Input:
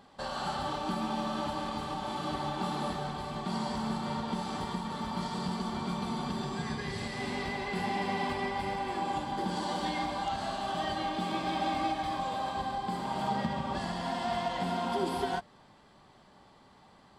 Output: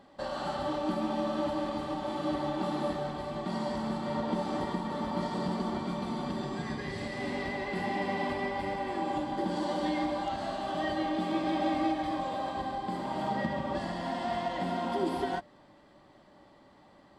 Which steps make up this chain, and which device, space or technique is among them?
inside a helmet (high-shelf EQ 5,400 Hz −5 dB; hollow resonant body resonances 310/570/1,900 Hz, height 10 dB, ringing for 45 ms)
0:04.14–0:05.78: parametric band 470 Hz +3.5 dB 2.8 octaves
level −2 dB

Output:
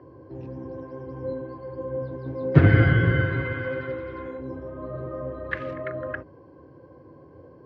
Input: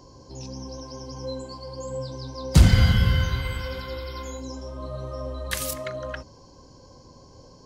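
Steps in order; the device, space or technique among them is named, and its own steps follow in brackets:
0:02.25–0:03.92: comb filter 7.3 ms, depth 87%
sub-octave bass pedal (sub-octave generator, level −3 dB; loudspeaker in its box 87–2,100 Hz, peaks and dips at 210 Hz −9 dB, 330 Hz +9 dB, 470 Hz +4 dB, 890 Hz −6 dB, 1,700 Hz +6 dB)

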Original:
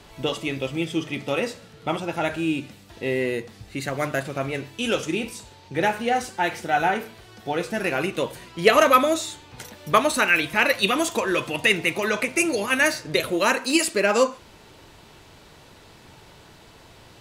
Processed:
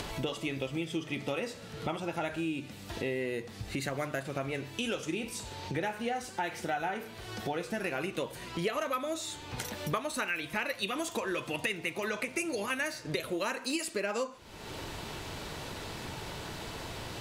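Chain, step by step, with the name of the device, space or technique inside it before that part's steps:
upward and downward compression (upward compression, threshold −27 dBFS; downward compressor 6 to 1, threshold −28 dBFS, peak gain reduction 16.5 dB)
level −2.5 dB

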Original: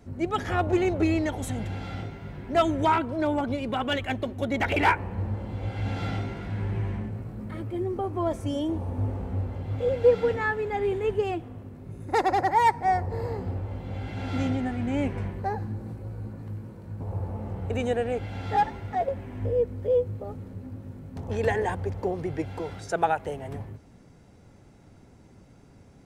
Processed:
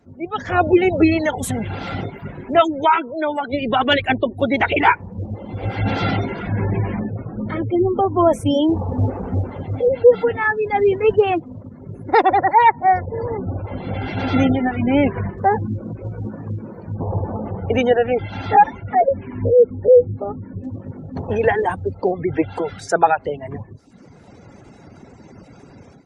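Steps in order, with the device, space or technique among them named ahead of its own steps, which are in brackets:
0:02.60–0:03.52: high-pass filter 250 Hz → 690 Hz 6 dB per octave
reverb reduction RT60 0.91 s
noise-suppressed video call (high-pass filter 160 Hz 6 dB per octave; gate on every frequency bin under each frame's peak −30 dB strong; automatic gain control gain up to 16.5 dB; level −1 dB; Opus 24 kbit/s 48,000 Hz)

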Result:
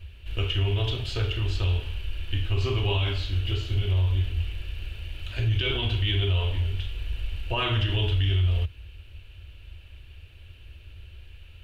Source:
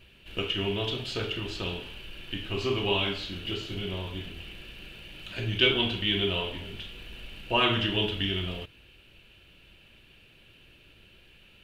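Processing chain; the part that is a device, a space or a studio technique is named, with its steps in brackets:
car stereo with a boomy subwoofer (low shelf with overshoot 120 Hz +13.5 dB, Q 3; brickwall limiter −16.5 dBFS, peak gain reduction 9 dB)

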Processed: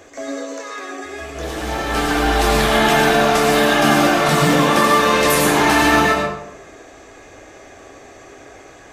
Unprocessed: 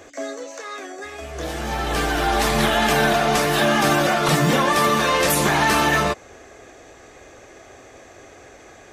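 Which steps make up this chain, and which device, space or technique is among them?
bathroom (convolution reverb RT60 0.75 s, pre-delay 91 ms, DRR −1 dB)

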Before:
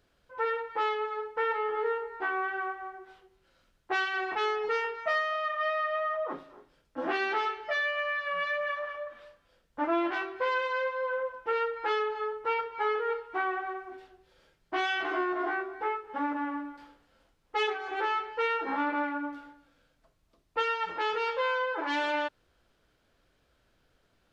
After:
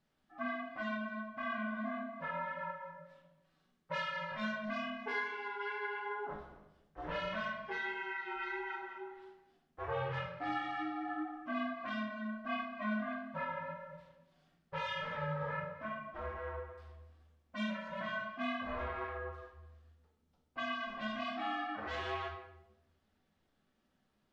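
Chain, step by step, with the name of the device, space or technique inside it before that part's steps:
alien voice (ring modulation 210 Hz; flanger 1.5 Hz, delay 0.9 ms, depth 4.7 ms, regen −31%)
rectangular room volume 280 cubic metres, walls mixed, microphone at 1.1 metres
level −5.5 dB

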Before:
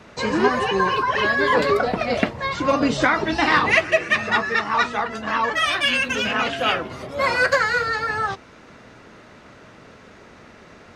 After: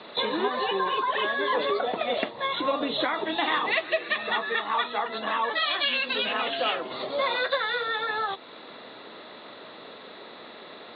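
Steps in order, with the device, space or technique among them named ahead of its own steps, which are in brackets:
hearing aid with frequency lowering (hearing-aid frequency compression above 3,300 Hz 4 to 1; downward compressor 2.5 to 1, threshold −30 dBFS, peak gain reduction 12 dB; loudspeaker in its box 350–6,400 Hz, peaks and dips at 1,500 Hz −6 dB, 2,300 Hz −4 dB, 4,200 Hz +7 dB)
level +4 dB

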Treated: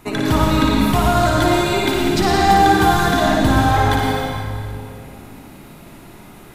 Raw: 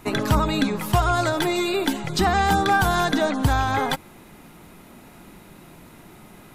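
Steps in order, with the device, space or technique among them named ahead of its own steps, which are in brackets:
tunnel (flutter between parallel walls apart 9.8 metres, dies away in 0.65 s; convolution reverb RT60 2.5 s, pre-delay 81 ms, DRR −2 dB)

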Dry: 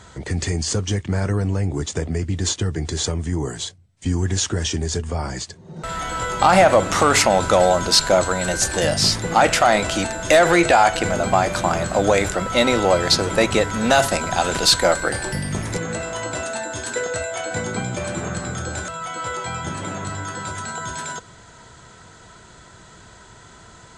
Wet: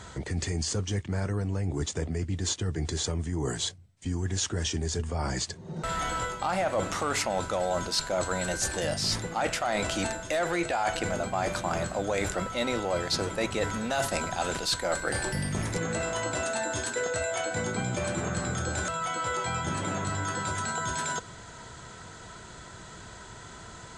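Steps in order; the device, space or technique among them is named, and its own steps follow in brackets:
compression on the reversed sound (reversed playback; downward compressor 5 to 1, threshold −27 dBFS, peak gain reduction 15.5 dB; reversed playback)

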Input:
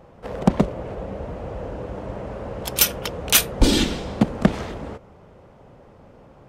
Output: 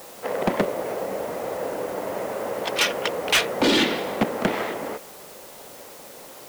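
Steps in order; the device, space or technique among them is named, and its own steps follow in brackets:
drive-through speaker (band-pass filter 350–3,500 Hz; parametric band 2,000 Hz +5 dB 0.24 octaves; hard clipping −20.5 dBFS, distortion −8 dB; white noise bed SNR 19 dB)
level +6 dB

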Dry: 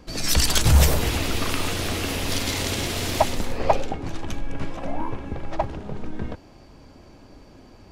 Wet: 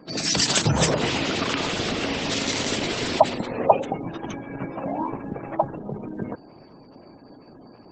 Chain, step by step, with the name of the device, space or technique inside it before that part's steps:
0:02.79–0:03.81: dynamic equaliser 6,200 Hz, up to −3 dB, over −50 dBFS, Q 3
noise-suppressed video call (high-pass filter 130 Hz 24 dB per octave; gate on every frequency bin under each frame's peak −20 dB strong; level +3.5 dB; Opus 12 kbit/s 48,000 Hz)

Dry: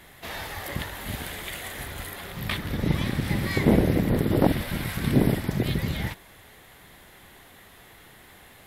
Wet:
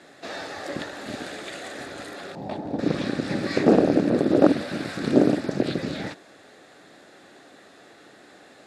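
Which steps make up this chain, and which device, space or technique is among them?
0:02.35–0:02.79: drawn EQ curve 510 Hz 0 dB, 860 Hz +10 dB, 1,200 Hz −14 dB
full-range speaker at full volume (highs frequency-modulated by the lows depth 0.71 ms; loudspeaker in its box 260–7,300 Hz, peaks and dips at 290 Hz +6 dB, 580 Hz +3 dB, 980 Hz −10 dB, 2,100 Hz −9 dB, 3,100 Hz −10 dB, 5,900 Hz −3 dB)
level +4.5 dB

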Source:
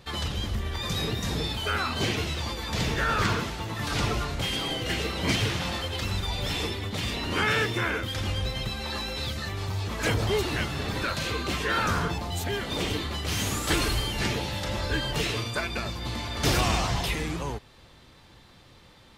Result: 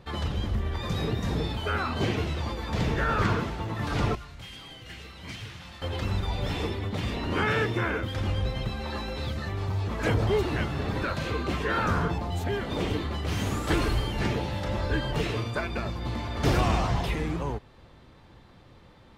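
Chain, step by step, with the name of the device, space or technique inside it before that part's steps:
through cloth (high-shelf EQ 2,500 Hz −13.5 dB)
0:04.15–0:05.82: guitar amp tone stack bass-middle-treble 5-5-5
level +2 dB

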